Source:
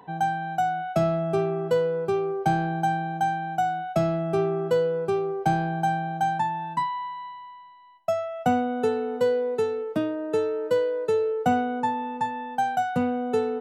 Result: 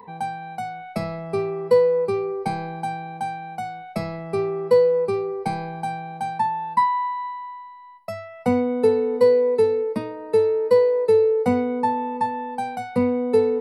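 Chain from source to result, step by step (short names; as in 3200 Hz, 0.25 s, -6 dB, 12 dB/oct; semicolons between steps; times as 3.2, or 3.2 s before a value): ripple EQ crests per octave 0.91, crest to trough 16 dB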